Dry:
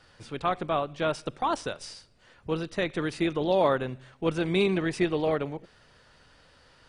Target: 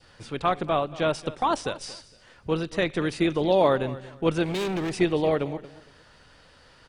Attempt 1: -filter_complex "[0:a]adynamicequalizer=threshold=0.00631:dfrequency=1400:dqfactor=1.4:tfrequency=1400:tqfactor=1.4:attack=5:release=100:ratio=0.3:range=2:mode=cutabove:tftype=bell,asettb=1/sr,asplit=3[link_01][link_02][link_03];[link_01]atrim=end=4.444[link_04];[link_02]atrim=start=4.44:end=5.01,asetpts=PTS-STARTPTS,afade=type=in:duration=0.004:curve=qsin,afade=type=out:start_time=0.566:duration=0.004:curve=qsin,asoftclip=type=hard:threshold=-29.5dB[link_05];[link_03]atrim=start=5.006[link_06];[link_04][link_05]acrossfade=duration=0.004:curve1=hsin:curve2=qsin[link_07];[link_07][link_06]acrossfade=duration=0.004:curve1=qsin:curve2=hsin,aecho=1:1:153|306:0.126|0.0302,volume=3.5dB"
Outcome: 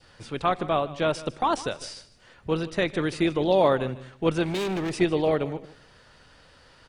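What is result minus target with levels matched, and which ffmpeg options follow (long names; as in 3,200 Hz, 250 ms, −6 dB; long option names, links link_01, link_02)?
echo 77 ms early
-filter_complex "[0:a]adynamicequalizer=threshold=0.00631:dfrequency=1400:dqfactor=1.4:tfrequency=1400:tqfactor=1.4:attack=5:release=100:ratio=0.3:range=2:mode=cutabove:tftype=bell,asettb=1/sr,asplit=3[link_01][link_02][link_03];[link_01]atrim=end=4.444[link_04];[link_02]atrim=start=4.44:end=5.01,asetpts=PTS-STARTPTS,afade=type=in:duration=0.004:curve=qsin,afade=type=out:start_time=0.566:duration=0.004:curve=qsin,asoftclip=type=hard:threshold=-29.5dB[link_05];[link_03]atrim=start=5.006[link_06];[link_04][link_05]acrossfade=duration=0.004:curve1=hsin:curve2=qsin[link_07];[link_07][link_06]acrossfade=duration=0.004:curve1=qsin:curve2=hsin,aecho=1:1:230|460:0.126|0.0302,volume=3.5dB"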